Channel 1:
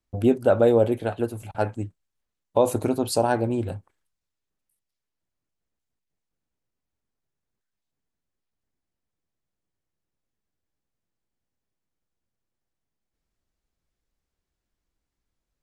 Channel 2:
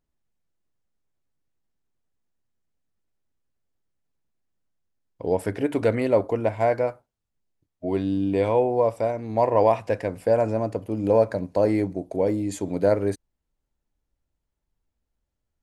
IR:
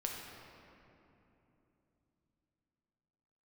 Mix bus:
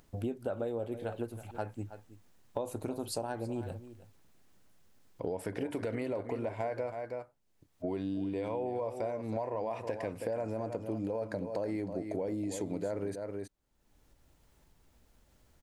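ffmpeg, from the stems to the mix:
-filter_complex "[0:a]volume=-8.5dB,asplit=2[a][b];[b]volume=-17dB[c];[1:a]lowshelf=f=73:g=-6.5,acompressor=mode=upward:threshold=-46dB:ratio=2.5,alimiter=limit=-16.5dB:level=0:latency=1:release=40,volume=-1.5dB,asplit=2[d][e];[e]volume=-11dB[f];[c][f]amix=inputs=2:normalize=0,aecho=0:1:321:1[g];[a][d][g]amix=inputs=3:normalize=0,acompressor=threshold=-32dB:ratio=6"

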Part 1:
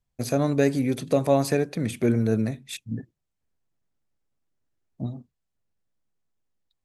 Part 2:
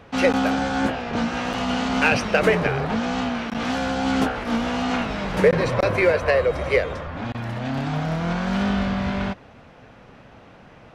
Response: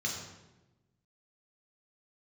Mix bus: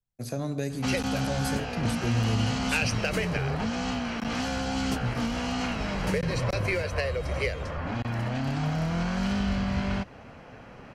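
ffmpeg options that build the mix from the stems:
-filter_complex "[0:a]dynaudnorm=f=130:g=5:m=10dB,volume=-9dB,asplit=2[a][b];[b]volume=-15dB[c];[1:a]bandreject=f=3.6k:w=7.2,adelay=700,volume=0.5dB[d];[2:a]atrim=start_sample=2205[e];[c][e]afir=irnorm=-1:irlink=0[f];[a][d][f]amix=inputs=3:normalize=0,acrossover=split=150|3000[g][h][i];[h]acompressor=threshold=-31dB:ratio=4[j];[g][j][i]amix=inputs=3:normalize=0"

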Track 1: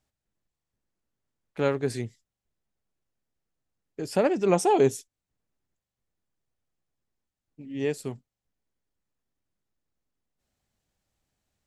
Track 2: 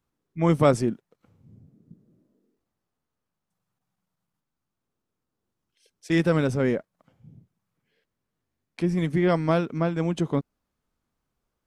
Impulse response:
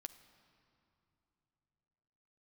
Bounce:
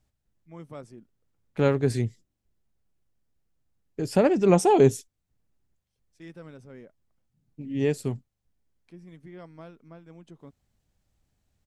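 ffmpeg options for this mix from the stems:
-filter_complex "[0:a]lowshelf=f=210:g=10.5,volume=0.5dB,asplit=2[a][b];[1:a]adelay=100,volume=-12dB[c];[b]apad=whole_len=518812[d];[c][d]sidechaingate=range=-11dB:threshold=-44dB:ratio=16:detection=peak[e];[a][e]amix=inputs=2:normalize=0"

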